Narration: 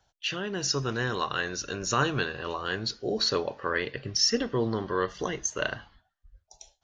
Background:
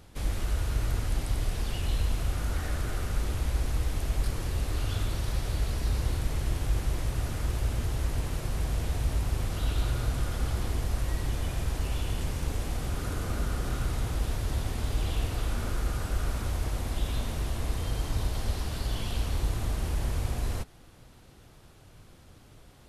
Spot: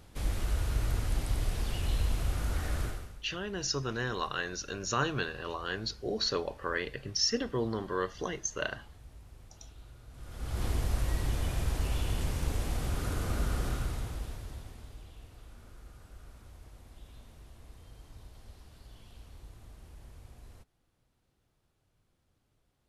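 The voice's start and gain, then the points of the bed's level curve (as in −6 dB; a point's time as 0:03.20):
3.00 s, −4.5 dB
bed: 0:02.85 −2 dB
0:03.23 −23.5 dB
0:10.07 −23.5 dB
0:10.64 −1 dB
0:13.64 −1 dB
0:15.12 −21.5 dB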